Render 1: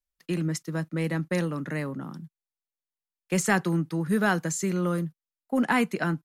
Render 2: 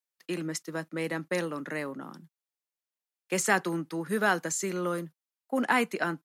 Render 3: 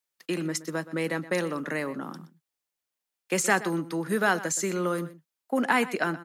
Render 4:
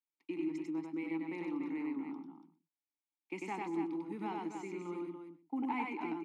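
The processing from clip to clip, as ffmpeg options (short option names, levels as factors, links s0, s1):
-af "highpass=310"
-filter_complex "[0:a]asplit=2[s0][s1];[s1]acompressor=threshold=0.0178:ratio=6,volume=0.891[s2];[s0][s2]amix=inputs=2:normalize=0,asplit=2[s3][s4];[s4]adelay=122.4,volume=0.158,highshelf=f=4000:g=-2.76[s5];[s3][s5]amix=inputs=2:normalize=0"
-filter_complex "[0:a]asplit=3[s0][s1][s2];[s0]bandpass=f=300:t=q:w=8,volume=1[s3];[s1]bandpass=f=870:t=q:w=8,volume=0.501[s4];[s2]bandpass=f=2240:t=q:w=8,volume=0.355[s5];[s3][s4][s5]amix=inputs=3:normalize=0,aecho=1:1:96.21|285.7:0.794|0.447,volume=0.794"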